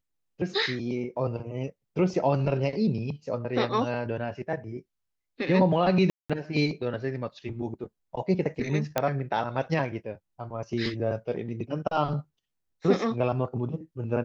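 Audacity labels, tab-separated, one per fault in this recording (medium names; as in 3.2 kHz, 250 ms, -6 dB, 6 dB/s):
6.100000	6.300000	dropout 196 ms
8.980000	8.980000	pop -9 dBFS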